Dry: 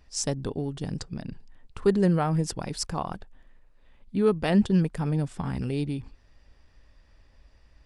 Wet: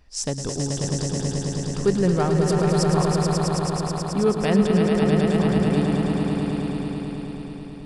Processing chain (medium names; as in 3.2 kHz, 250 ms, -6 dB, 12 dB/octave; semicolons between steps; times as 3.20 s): echo with a slow build-up 108 ms, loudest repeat 5, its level -5.5 dB; trim +1.5 dB